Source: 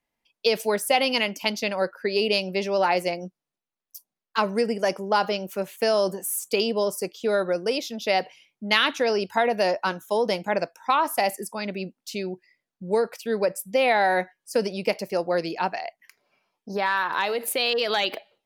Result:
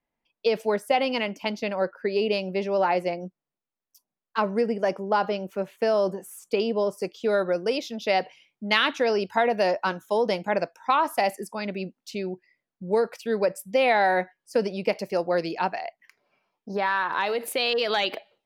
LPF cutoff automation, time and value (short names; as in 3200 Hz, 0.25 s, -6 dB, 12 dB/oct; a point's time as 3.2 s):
LPF 6 dB/oct
1600 Hz
from 7 s 4000 Hz
from 12.11 s 2400 Hz
from 12.97 s 5200 Hz
from 14.11 s 2900 Hz
from 14.96 s 5500 Hz
from 15.74 s 2900 Hz
from 17.26 s 5200 Hz